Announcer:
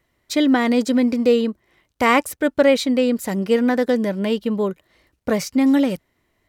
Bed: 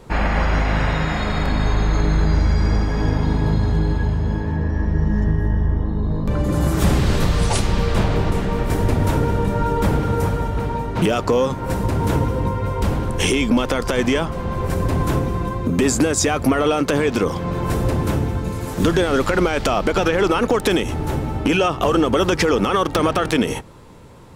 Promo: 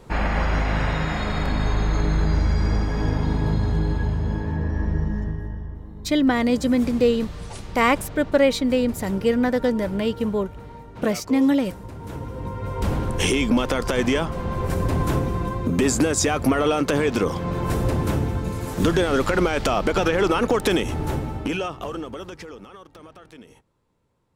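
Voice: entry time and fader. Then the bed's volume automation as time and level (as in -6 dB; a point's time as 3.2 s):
5.75 s, -2.5 dB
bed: 4.92 s -3.5 dB
5.81 s -17 dB
11.99 s -17 dB
12.94 s -2.5 dB
21.11 s -2.5 dB
22.86 s -27 dB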